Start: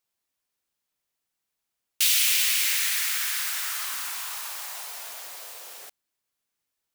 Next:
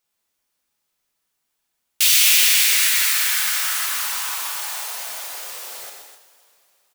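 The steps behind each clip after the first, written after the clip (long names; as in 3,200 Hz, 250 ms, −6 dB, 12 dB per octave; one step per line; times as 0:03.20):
loudspeakers that aren't time-aligned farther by 42 metres −6 dB, 86 metres −9 dB
coupled-rooms reverb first 0.46 s, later 3.1 s, from −16 dB, DRR 3 dB
level +4.5 dB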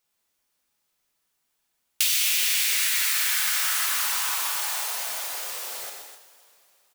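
downward compressor 6 to 1, threshold −20 dBFS, peak gain reduction 9 dB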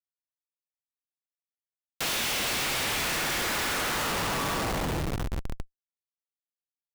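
four-comb reverb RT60 0.69 s, combs from 27 ms, DRR −1 dB
comparator with hysteresis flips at −19 dBFS
level −4.5 dB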